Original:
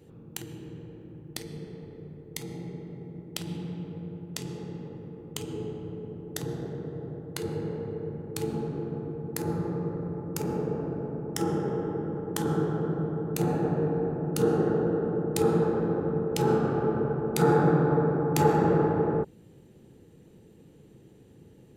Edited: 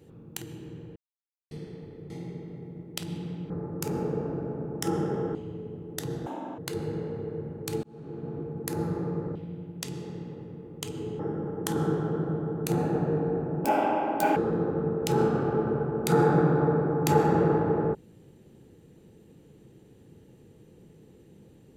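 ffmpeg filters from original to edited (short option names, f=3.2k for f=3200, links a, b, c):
-filter_complex "[0:a]asplit=13[a][b][c][d][e][f][g][h][i][j][k][l][m];[a]atrim=end=0.96,asetpts=PTS-STARTPTS,afade=t=out:st=0.956:d=0.004:c=hsin[n];[b]atrim=start=0.96:end=1.51,asetpts=PTS-STARTPTS,volume=0[o];[c]atrim=start=1.51:end=2.102,asetpts=PTS-STARTPTS,afade=t=in:d=0.004:c=hsin[p];[d]atrim=start=2.488:end=3.892[q];[e]atrim=start=10.038:end=11.892[r];[f]atrim=start=5.728:end=6.644[s];[g]atrim=start=6.64:end=7.27,asetpts=PTS-STARTPTS,asetrate=85995,aresample=44100[t];[h]atrim=start=7.266:end=8.52,asetpts=PTS-STARTPTS,afade=t=out:st=1.25:d=0.004:c=hsin[u];[i]atrim=start=8.52:end=10.042,asetpts=PTS-STARTPTS,afade=t=in:d=0.56[v];[j]atrim=start=3.888:end=5.732[w];[k]atrim=start=11.888:end=14.344[x];[l]atrim=start=14.34:end=15.66,asetpts=PTS-STARTPTS,asetrate=80703,aresample=44100[y];[m]atrim=start=15.656[z];[n][o][p]concat=n=3:v=0:a=1[aa];[aa][q]acrossfade=d=0.004:c1=hsin:c2=hsin[ab];[ab][r]acrossfade=d=0.004:c1=hsin:c2=hsin[ac];[ac][s]acrossfade=d=0.004:c1=hsin:c2=hsin[ad];[ad][t]acrossfade=d=0.004:c1=hsin:c2=hsin[ae];[u][v]concat=n=2:v=0:a=1[af];[ae][af]acrossfade=d=0.004:c1=hsin:c2=hsin[ag];[ag][w]acrossfade=d=0.004:c1=hsin:c2=hsin[ah];[ah][x]acrossfade=d=0.004:c1=hsin:c2=hsin[ai];[ai][y]acrossfade=d=0.004:c1=hsin:c2=hsin[aj];[aj][z]acrossfade=d=0.004:c1=hsin:c2=hsin"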